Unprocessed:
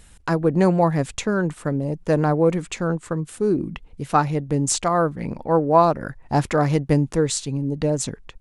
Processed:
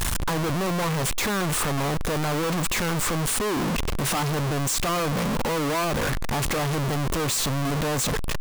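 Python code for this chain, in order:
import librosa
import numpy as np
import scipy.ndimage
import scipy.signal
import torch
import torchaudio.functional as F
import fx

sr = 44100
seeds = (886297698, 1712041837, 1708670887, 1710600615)

y = np.sign(x) * np.sqrt(np.mean(np.square(x)))
y = fx.peak_eq(y, sr, hz=1100.0, db=4.5, octaves=0.32)
y = y * librosa.db_to_amplitude(-3.5)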